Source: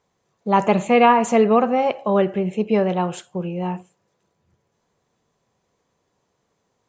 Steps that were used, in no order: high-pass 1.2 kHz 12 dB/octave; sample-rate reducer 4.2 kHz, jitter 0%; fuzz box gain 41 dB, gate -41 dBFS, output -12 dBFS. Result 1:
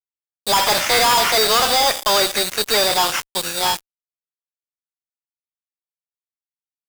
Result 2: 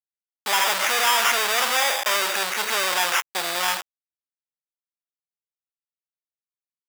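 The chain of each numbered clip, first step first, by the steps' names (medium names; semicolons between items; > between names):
sample-rate reducer > high-pass > fuzz box; sample-rate reducer > fuzz box > high-pass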